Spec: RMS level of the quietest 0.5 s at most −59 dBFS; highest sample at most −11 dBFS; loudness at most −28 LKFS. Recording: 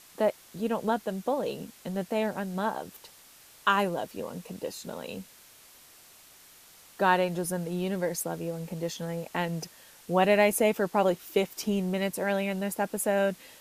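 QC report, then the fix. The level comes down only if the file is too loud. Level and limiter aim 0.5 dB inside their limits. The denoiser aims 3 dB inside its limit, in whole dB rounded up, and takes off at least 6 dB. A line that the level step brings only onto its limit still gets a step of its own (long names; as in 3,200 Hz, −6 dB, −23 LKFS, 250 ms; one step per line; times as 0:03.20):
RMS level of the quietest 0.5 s −54 dBFS: out of spec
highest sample −10.0 dBFS: out of spec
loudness −29.5 LKFS: in spec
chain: broadband denoise 8 dB, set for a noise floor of −54 dBFS
brickwall limiter −11.5 dBFS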